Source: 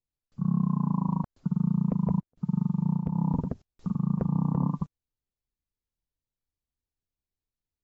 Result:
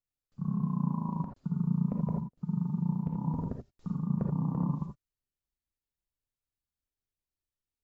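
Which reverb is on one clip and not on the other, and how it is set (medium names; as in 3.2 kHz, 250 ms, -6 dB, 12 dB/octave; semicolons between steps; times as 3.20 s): gated-style reverb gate 100 ms rising, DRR 2.5 dB; trim -6 dB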